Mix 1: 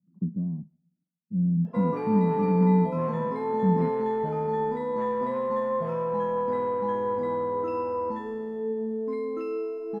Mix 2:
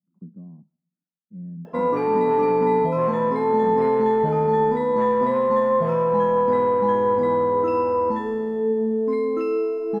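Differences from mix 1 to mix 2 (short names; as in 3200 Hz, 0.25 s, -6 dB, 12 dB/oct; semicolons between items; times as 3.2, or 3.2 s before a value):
speech: add tilt +4.5 dB/oct; background +8.0 dB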